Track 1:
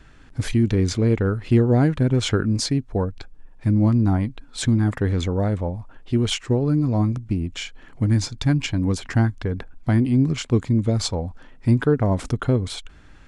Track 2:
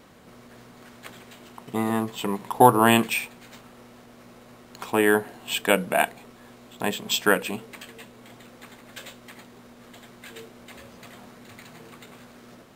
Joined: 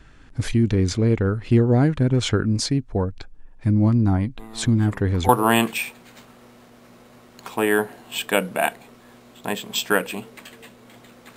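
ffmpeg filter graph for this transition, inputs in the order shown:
-filter_complex "[1:a]asplit=2[s0][s1];[0:a]apad=whole_dur=11.36,atrim=end=11.36,atrim=end=5.292[s2];[s1]atrim=start=2.648:end=8.72[s3];[s0]atrim=start=1.73:end=2.65,asetpts=PTS-STARTPTS,volume=0.15,afade=t=in:d=0.004:c=hsin,afade=t=out:st=0.916:d=0.004:c=hsin,adelay=192717S[s4];[s2][s3]acrossfade=d=0.004:c1=hsin:c2=hsin[s5];[s5][s4]amix=inputs=2:normalize=0"

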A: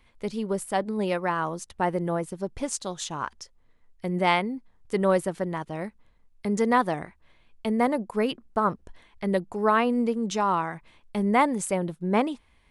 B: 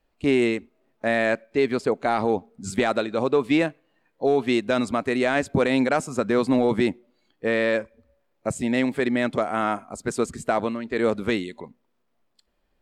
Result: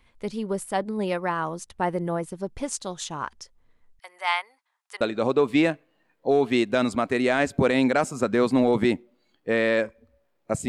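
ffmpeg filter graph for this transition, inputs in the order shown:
-filter_complex "[0:a]asettb=1/sr,asplit=3[s0][s1][s2];[s0]atrim=end=3.994[s3];[s1]atrim=start=3.99:end=5.01,asetpts=PTS-STARTPTS,afade=t=in:d=0.004:c=qsin,afade=t=out:st=1.016:d=0.004:c=qsin,highpass=f=860:w=0.5412,highpass=f=860:w=1.3066[s4];[s2]atrim=start=5.006[s5];[s3][s4]acrossfade=d=0.004:c1=hsin:c2=qsin[s6];[s6][s5]acrossfade=d=0.004:c1=qsin:c2=hsin,apad=whole_dur=10.68,atrim=end=10.68,atrim=end=5.012[s7];[1:a]atrim=start=2.968:end=8.64[s8];[s7][s8]acrossfade=d=0.004:c1=hsin:c2=hsin"

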